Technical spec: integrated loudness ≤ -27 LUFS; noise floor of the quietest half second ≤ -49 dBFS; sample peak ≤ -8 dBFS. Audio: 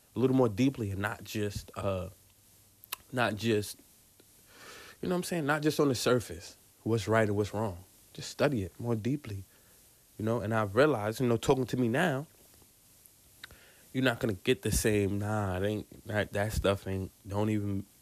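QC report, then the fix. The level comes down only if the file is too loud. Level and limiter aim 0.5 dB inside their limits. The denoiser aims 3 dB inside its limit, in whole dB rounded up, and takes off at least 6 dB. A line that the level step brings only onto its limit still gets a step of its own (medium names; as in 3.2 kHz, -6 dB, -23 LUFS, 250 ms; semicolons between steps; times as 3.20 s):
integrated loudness -31.0 LUFS: pass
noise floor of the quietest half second -62 dBFS: pass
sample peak -14.0 dBFS: pass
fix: none needed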